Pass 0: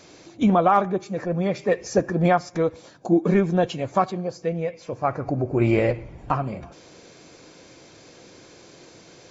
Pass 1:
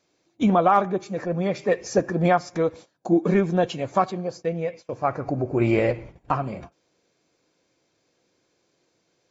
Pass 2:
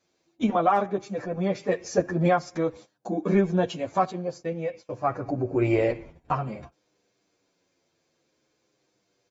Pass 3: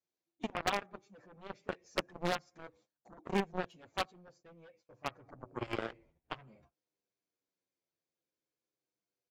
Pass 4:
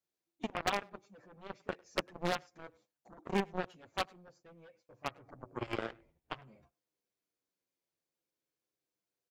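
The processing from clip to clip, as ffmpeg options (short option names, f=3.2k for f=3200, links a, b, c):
-af "agate=range=-21dB:threshold=-38dB:ratio=16:detection=peak,lowshelf=f=130:g=-4.5"
-filter_complex "[0:a]asplit=2[a][b];[b]adelay=8.7,afreqshift=-0.51[c];[a][c]amix=inputs=2:normalize=1"
-af "aeval=exprs='0.398*(cos(1*acos(clip(val(0)/0.398,-1,1)))-cos(1*PI/2))+0.141*(cos(3*acos(clip(val(0)/0.398,-1,1)))-cos(3*PI/2))':c=same,aeval=exprs='0.0944*(abs(mod(val(0)/0.0944+3,4)-2)-1)':c=same,volume=1dB"
-filter_complex "[0:a]asplit=2[a][b];[b]adelay=100,highpass=300,lowpass=3.4k,asoftclip=type=hard:threshold=-28.5dB,volume=-25dB[c];[a][c]amix=inputs=2:normalize=0"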